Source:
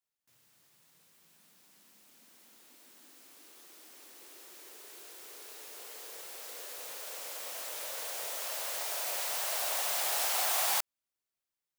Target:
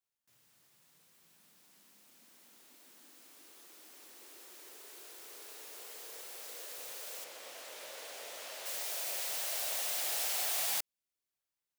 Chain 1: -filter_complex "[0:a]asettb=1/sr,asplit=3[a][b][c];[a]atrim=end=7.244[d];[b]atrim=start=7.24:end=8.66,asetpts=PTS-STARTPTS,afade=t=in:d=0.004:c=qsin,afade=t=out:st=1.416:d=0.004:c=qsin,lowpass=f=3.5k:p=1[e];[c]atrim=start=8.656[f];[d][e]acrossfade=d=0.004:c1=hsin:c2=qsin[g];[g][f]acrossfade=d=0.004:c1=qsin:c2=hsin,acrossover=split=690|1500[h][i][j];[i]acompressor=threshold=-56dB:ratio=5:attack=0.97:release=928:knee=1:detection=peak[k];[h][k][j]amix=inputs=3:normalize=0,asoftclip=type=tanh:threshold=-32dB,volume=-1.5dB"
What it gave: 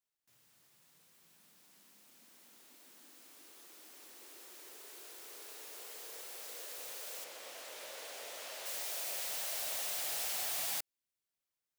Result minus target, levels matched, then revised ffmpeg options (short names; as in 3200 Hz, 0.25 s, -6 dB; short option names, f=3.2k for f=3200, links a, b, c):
soft clip: distortion +9 dB
-filter_complex "[0:a]asettb=1/sr,asplit=3[a][b][c];[a]atrim=end=7.244[d];[b]atrim=start=7.24:end=8.66,asetpts=PTS-STARTPTS,afade=t=in:d=0.004:c=qsin,afade=t=out:st=1.416:d=0.004:c=qsin,lowpass=f=3.5k:p=1[e];[c]atrim=start=8.656[f];[d][e]acrossfade=d=0.004:c1=hsin:c2=qsin[g];[g][f]acrossfade=d=0.004:c1=qsin:c2=hsin,acrossover=split=690|1500[h][i][j];[i]acompressor=threshold=-56dB:ratio=5:attack=0.97:release=928:knee=1:detection=peak[k];[h][k][j]amix=inputs=3:normalize=0,asoftclip=type=tanh:threshold=-24.5dB,volume=-1.5dB"